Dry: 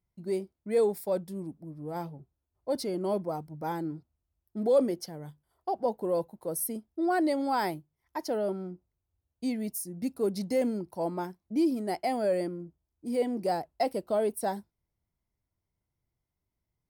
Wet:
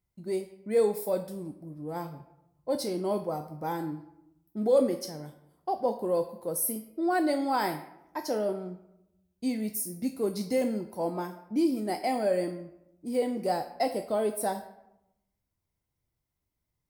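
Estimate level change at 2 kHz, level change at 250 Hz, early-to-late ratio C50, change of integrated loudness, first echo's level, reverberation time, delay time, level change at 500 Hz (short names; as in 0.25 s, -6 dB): +1.5 dB, +0.5 dB, 10.5 dB, +0.5 dB, none, 0.90 s, none, +0.5 dB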